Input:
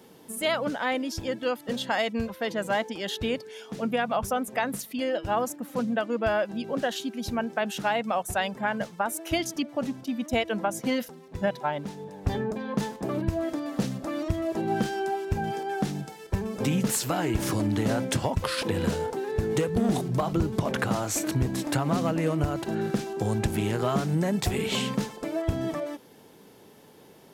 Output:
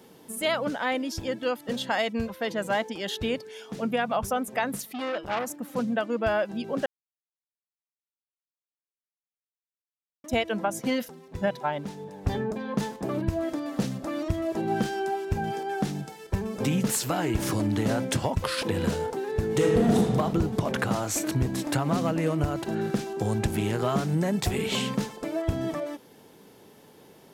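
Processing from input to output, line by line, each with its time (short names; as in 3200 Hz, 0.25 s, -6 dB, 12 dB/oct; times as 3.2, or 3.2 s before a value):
4.88–5.59 core saturation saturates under 1700 Hz
6.86–10.24 mute
19.5–19.98 reverb throw, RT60 1.9 s, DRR -1 dB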